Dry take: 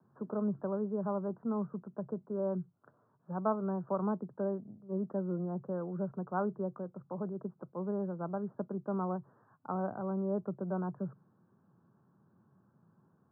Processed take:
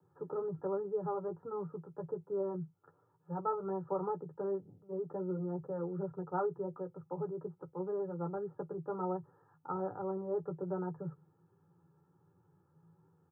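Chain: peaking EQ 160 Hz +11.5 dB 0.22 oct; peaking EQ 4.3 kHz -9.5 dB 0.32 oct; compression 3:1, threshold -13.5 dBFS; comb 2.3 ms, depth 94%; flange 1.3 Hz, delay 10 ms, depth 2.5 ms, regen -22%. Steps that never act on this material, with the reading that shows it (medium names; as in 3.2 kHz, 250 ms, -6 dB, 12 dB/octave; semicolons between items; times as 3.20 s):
peaking EQ 4.3 kHz: input has nothing above 1.4 kHz; compression, threshold -13.5 dBFS: peak at its input -18.5 dBFS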